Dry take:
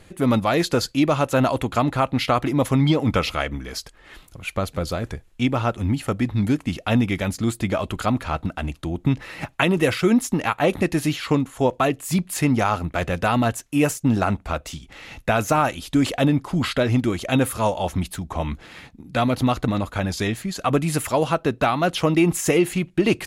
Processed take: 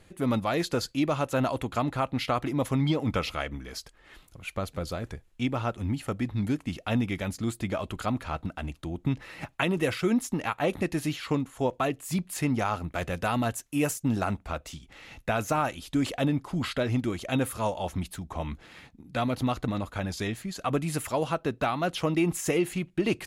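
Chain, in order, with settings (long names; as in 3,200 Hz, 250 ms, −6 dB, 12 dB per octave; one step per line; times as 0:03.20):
0:12.90–0:14.39: high-shelf EQ 7,100 Hz +6 dB
level −7.5 dB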